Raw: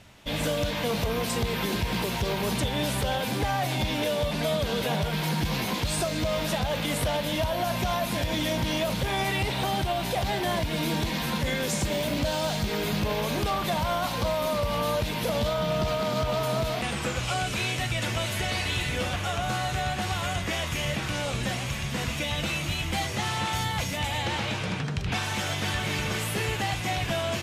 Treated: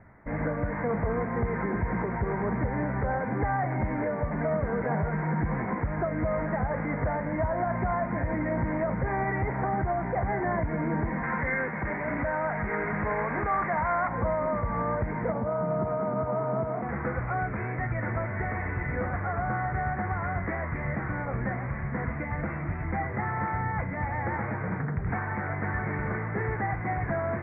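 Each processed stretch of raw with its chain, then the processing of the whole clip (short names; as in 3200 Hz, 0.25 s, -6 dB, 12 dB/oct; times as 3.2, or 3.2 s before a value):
11.23–14.08 tilt shelf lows -7 dB, about 890 Hz + fast leveller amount 50%
15.32–16.89 HPF 120 Hz + bell 1900 Hz -11 dB 0.64 oct
whole clip: steep low-pass 2100 Hz 96 dB/oct; notch 580 Hz, Q 19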